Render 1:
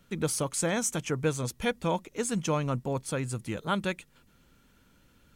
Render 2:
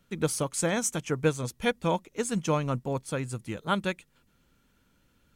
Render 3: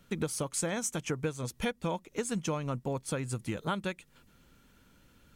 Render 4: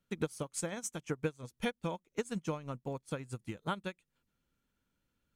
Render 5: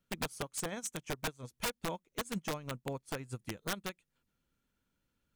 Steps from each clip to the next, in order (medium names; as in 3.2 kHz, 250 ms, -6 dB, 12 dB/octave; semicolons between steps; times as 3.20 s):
upward expansion 1.5:1, over -39 dBFS; trim +3.5 dB
compression 6:1, threshold -35 dBFS, peak gain reduction 15.5 dB; trim +5 dB
upward expansion 2.5:1, over -41 dBFS
integer overflow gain 28 dB